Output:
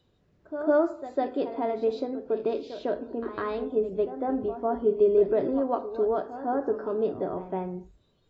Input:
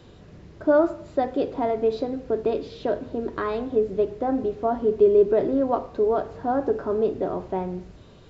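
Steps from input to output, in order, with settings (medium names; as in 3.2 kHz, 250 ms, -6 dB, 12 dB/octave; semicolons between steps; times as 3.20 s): spectral noise reduction 16 dB; reverse echo 153 ms -11.5 dB; trim -4 dB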